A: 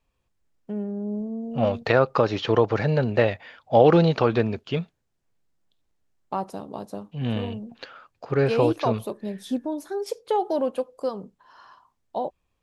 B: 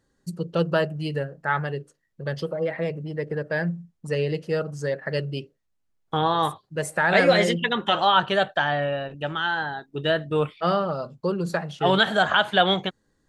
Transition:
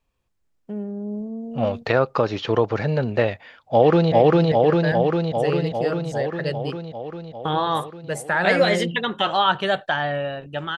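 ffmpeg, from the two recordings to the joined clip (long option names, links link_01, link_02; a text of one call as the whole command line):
ffmpeg -i cue0.wav -i cue1.wav -filter_complex "[0:a]apad=whole_dur=10.77,atrim=end=10.77,atrim=end=4.122[link_01];[1:a]atrim=start=2.798:end=9.45[link_02];[link_01][link_02]acrossfade=duration=0.004:curve1=hsin:curve2=hsin,asplit=2[link_03][link_04];[link_04]afade=type=in:start_time=3.42:duration=0.01,afade=type=out:start_time=4.12:duration=0.01,aecho=0:1:400|800|1200|1600|2000|2400|2800|3200|3600|4000|4400|4800:1|0.75|0.5625|0.421875|0.316406|0.237305|0.177979|0.133484|0.100113|0.0750847|0.0563135|0.0422351[link_05];[link_03][link_05]amix=inputs=2:normalize=0" out.wav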